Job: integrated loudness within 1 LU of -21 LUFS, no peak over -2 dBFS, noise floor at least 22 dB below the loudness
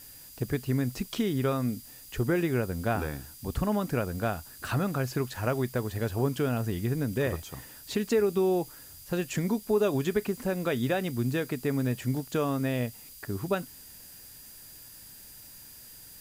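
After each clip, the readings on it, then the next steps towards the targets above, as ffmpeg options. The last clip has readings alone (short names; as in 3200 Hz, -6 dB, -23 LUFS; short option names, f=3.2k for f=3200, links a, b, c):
steady tone 4800 Hz; tone level -57 dBFS; noise floor -49 dBFS; noise floor target -52 dBFS; loudness -30.0 LUFS; peak -14.5 dBFS; loudness target -21.0 LUFS
-> -af "bandreject=f=4.8k:w=30"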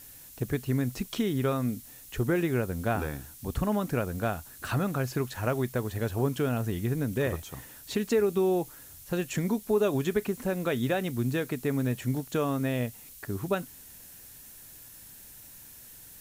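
steady tone none; noise floor -49 dBFS; noise floor target -52 dBFS
-> -af "afftdn=nr=6:nf=-49"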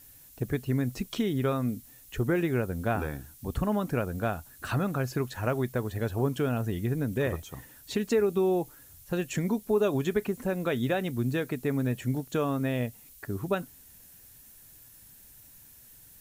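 noise floor -54 dBFS; loudness -30.0 LUFS; peak -14.5 dBFS; loudness target -21.0 LUFS
-> -af "volume=9dB"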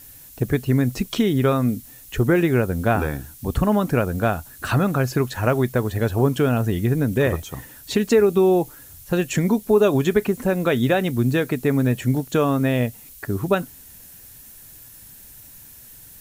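loudness -21.0 LUFS; peak -5.5 dBFS; noise floor -45 dBFS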